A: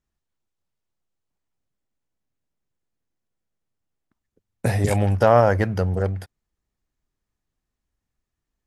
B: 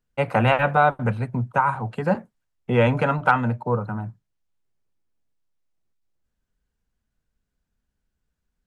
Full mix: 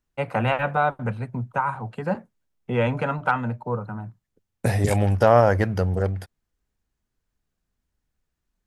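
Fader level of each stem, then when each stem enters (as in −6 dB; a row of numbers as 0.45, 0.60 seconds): −0.5, −4.0 decibels; 0.00, 0.00 seconds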